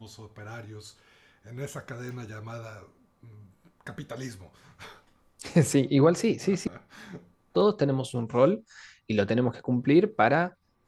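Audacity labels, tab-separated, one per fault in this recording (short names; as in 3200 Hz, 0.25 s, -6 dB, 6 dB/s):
2.090000	2.090000	pop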